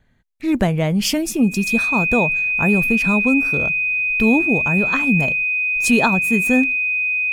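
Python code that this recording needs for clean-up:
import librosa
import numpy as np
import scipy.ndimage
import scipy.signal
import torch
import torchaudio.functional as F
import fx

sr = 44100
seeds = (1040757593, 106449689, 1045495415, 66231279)

y = fx.notch(x, sr, hz=2500.0, q=30.0)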